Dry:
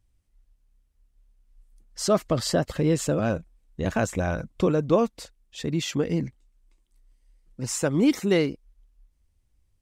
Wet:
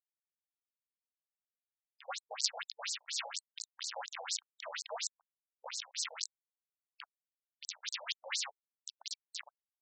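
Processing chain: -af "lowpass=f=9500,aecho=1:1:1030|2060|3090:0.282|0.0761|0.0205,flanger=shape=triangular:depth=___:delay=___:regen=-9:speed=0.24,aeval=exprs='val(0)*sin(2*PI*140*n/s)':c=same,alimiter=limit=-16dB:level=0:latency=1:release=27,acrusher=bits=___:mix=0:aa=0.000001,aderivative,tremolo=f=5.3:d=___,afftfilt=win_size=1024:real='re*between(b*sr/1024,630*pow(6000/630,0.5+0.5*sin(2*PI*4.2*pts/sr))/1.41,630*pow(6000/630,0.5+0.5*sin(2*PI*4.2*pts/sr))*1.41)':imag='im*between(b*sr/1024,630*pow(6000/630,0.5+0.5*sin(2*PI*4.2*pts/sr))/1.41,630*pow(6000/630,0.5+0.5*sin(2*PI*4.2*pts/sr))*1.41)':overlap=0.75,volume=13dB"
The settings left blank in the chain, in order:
8.2, 9.4, 4, 0.47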